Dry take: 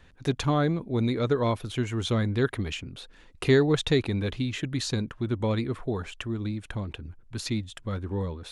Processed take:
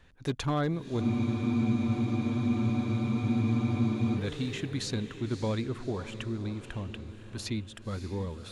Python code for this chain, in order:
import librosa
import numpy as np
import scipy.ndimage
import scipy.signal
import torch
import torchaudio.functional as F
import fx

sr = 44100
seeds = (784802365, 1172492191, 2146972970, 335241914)

y = np.clip(10.0 ** (18.5 / 20.0) * x, -1.0, 1.0) / 10.0 ** (18.5 / 20.0)
y = fx.echo_diffused(y, sr, ms=580, feedback_pct=49, wet_db=-11.5)
y = fx.spec_freeze(y, sr, seeds[0], at_s=1.05, hold_s=3.12)
y = F.gain(torch.from_numpy(y), -4.0).numpy()